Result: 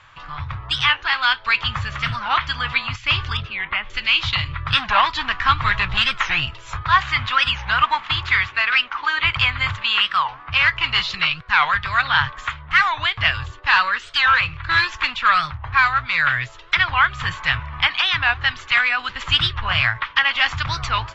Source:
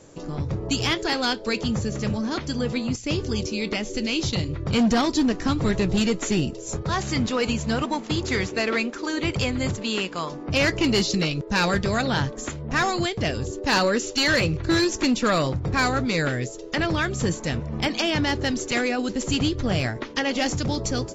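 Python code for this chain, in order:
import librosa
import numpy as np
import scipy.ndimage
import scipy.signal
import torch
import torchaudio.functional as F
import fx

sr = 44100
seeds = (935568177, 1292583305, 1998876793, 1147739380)

y = fx.curve_eq(x, sr, hz=(110.0, 220.0, 470.0, 1100.0, 3300.0, 6100.0, 9100.0), db=(0, -23, -22, 13, 10, -13, -18))
y = fx.rider(y, sr, range_db=4, speed_s=0.5)
y = fx.air_absorb(y, sr, metres=460.0, at=(3.37, 3.9))
y = fx.record_warp(y, sr, rpm=45.0, depth_cents=250.0)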